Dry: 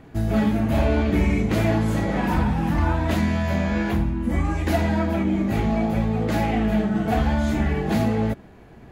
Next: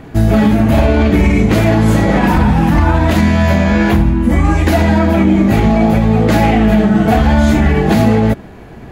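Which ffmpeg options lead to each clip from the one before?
-af "alimiter=level_in=4.73:limit=0.891:release=50:level=0:latency=1,volume=0.891"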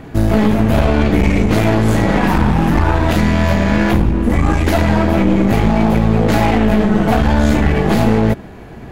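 -af "aeval=exprs='clip(val(0),-1,0.15)':c=same"

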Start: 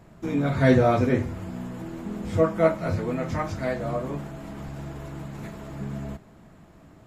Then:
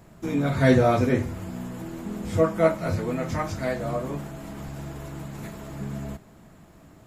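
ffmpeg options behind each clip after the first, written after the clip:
-af "highshelf=f=6300:g=9"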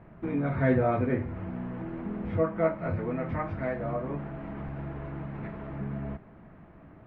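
-filter_complex "[0:a]lowpass=f=2300:w=0.5412,lowpass=f=2300:w=1.3066,asplit=2[s0][s1];[s1]acompressor=threshold=0.0282:ratio=6,volume=1.41[s2];[s0][s2]amix=inputs=2:normalize=0,volume=0.398"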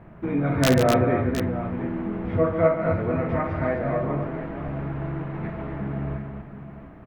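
-af "aeval=exprs='(mod(4.73*val(0)+1,2)-1)/4.73':c=same,aecho=1:1:55|143|252|714:0.335|0.355|0.501|0.266,volume=1.68"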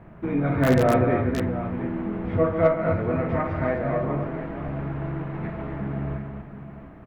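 -filter_complex "[0:a]acrossover=split=1100[s0][s1];[s1]aeval=exprs='0.106*(abs(mod(val(0)/0.106+3,4)-2)-1)':c=same[s2];[s0][s2]amix=inputs=2:normalize=0,aeval=exprs='0.447*(cos(1*acos(clip(val(0)/0.447,-1,1)))-cos(1*PI/2))+0.00891*(cos(6*acos(clip(val(0)/0.447,-1,1)))-cos(6*PI/2))':c=same"

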